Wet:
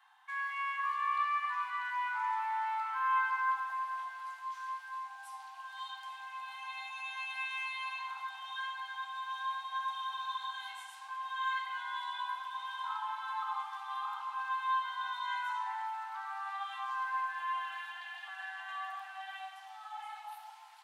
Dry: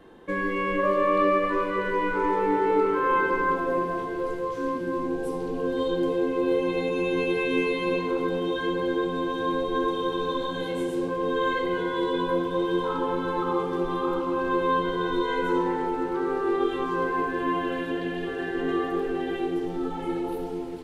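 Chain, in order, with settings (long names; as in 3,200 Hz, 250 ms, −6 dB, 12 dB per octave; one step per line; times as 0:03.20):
Chebyshev high-pass filter 740 Hz, order 10
0:18.28–0:20.50: frequency shifter −19 Hz
level −6 dB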